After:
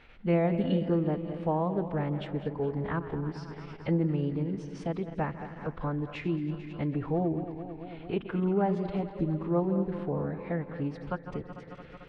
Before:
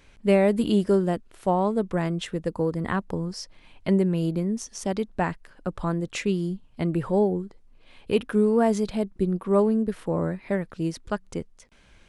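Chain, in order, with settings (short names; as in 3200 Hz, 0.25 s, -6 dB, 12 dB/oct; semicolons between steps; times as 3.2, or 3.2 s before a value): regenerating reverse delay 0.111 s, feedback 79%, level -13.5 dB; notch 420 Hz, Q 12; in parallel at -0.5 dB: compressor, threshold -38 dBFS, peak gain reduction 22 dB; on the sum: air absorption 390 m; on a send: darkening echo 0.16 s, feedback 59%, low-pass 1600 Hz, level -19.5 dB; on the sum: formant-preserving pitch shift -2.5 st; mismatched tape noise reduction encoder only; gain -6 dB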